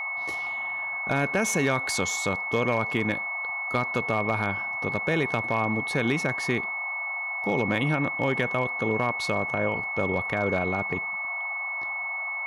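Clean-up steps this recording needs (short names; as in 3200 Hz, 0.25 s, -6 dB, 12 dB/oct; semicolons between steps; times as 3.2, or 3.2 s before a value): clip repair -15.5 dBFS; notch 2200 Hz, Q 30; noise print and reduce 30 dB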